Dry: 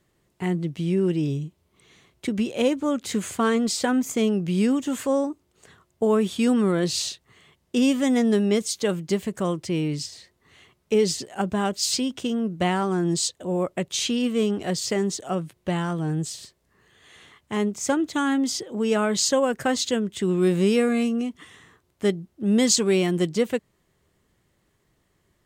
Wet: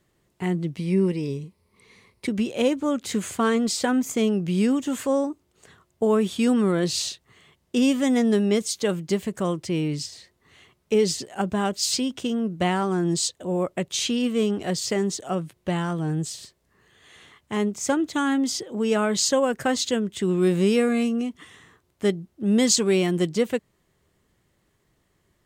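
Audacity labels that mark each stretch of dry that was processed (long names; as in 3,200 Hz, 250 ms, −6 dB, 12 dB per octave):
0.770000	2.260000	EQ curve with evenly spaced ripples crests per octave 0.9, crest to trough 10 dB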